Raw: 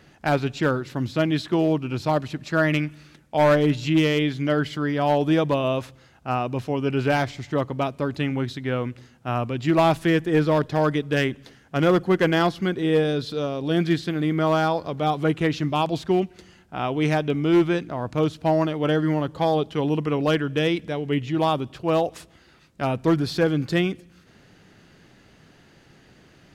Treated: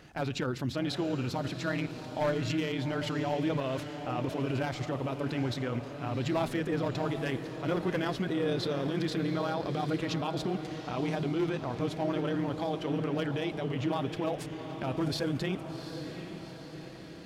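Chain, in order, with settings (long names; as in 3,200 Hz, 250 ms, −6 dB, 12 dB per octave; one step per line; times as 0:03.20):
brickwall limiter −23 dBFS, peak gain reduction 11 dB
time stretch by overlap-add 0.65×, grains 57 ms
feedback delay with all-pass diffusion 766 ms, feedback 56%, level −9 dB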